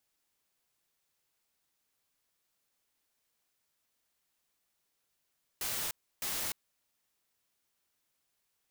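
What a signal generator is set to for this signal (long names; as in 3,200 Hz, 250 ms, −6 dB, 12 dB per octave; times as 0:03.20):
noise bursts white, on 0.30 s, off 0.31 s, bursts 2, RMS −35.5 dBFS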